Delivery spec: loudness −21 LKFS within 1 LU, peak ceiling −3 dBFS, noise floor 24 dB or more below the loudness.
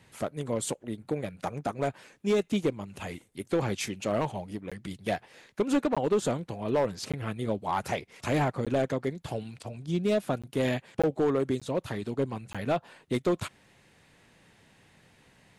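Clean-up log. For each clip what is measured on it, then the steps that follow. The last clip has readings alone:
share of clipped samples 1.1%; peaks flattened at −19.5 dBFS; number of dropouts 8; longest dropout 16 ms; integrated loudness −31.0 LKFS; sample peak −19.5 dBFS; target loudness −21.0 LKFS
→ clipped peaks rebuilt −19.5 dBFS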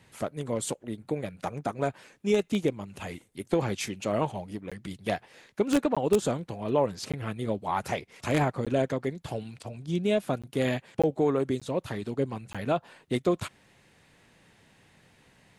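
share of clipped samples 0.0%; number of dropouts 8; longest dropout 16 ms
→ repair the gap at 0:04.70/0:05.95/0:07.12/0:08.65/0:10.42/0:11.02/0:11.60/0:12.53, 16 ms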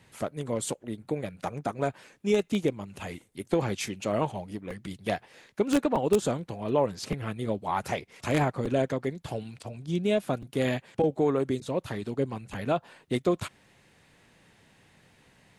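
number of dropouts 0; integrated loudness −30.0 LKFS; sample peak −10.5 dBFS; target loudness −21.0 LKFS
→ level +9 dB
brickwall limiter −3 dBFS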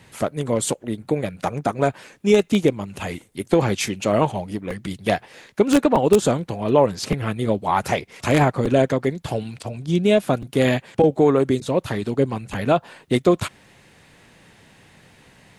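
integrated loudness −21.0 LKFS; sample peak −3.0 dBFS; background noise floor −53 dBFS

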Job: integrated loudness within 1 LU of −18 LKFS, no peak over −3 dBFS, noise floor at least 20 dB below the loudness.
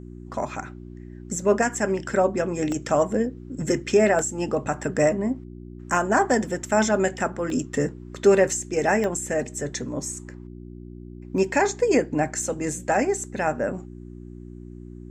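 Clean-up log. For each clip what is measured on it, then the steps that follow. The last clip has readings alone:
number of dropouts 5; longest dropout 1.4 ms; mains hum 60 Hz; hum harmonics up to 360 Hz; level of the hum −37 dBFS; integrated loudness −24.0 LKFS; sample peak −7.0 dBFS; target loudness −18.0 LKFS
→ repair the gap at 0:02.72/0:04.19/0:07.50/0:09.04/0:11.38, 1.4 ms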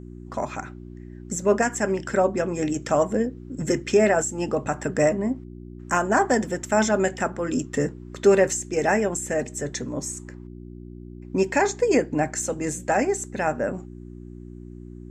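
number of dropouts 0; mains hum 60 Hz; hum harmonics up to 360 Hz; level of the hum −37 dBFS
→ hum removal 60 Hz, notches 6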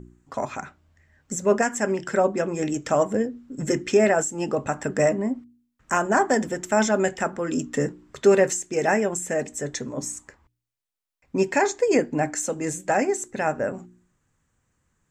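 mains hum none found; integrated loudness −24.0 LKFS; sample peak −7.5 dBFS; target loudness −18.0 LKFS
→ level +6 dB
brickwall limiter −3 dBFS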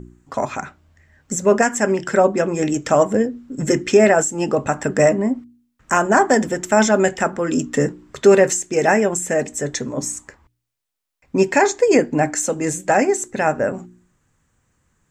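integrated loudness −18.0 LKFS; sample peak −3.0 dBFS; background noise floor −71 dBFS

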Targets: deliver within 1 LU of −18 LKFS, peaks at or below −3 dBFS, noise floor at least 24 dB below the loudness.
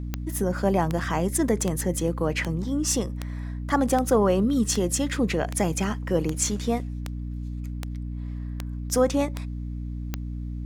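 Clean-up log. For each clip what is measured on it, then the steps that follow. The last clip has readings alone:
number of clicks 14; mains hum 60 Hz; hum harmonics up to 300 Hz; level of the hum −29 dBFS; integrated loudness −26.5 LKFS; sample peak −9.0 dBFS; target loudness −18.0 LKFS
→ click removal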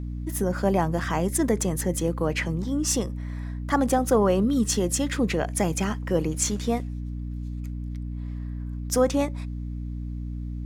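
number of clicks 0; mains hum 60 Hz; hum harmonics up to 300 Hz; level of the hum −29 dBFS
→ mains-hum notches 60/120/180/240/300 Hz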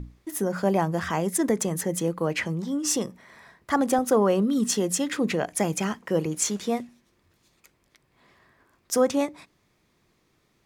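mains hum none found; integrated loudness −25.5 LKFS; sample peak −9.5 dBFS; target loudness −18.0 LKFS
→ level +7.5 dB
brickwall limiter −3 dBFS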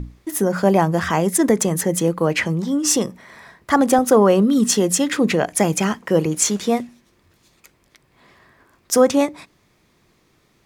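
integrated loudness −18.0 LKFS; sample peak −3.0 dBFS; background noise floor −61 dBFS

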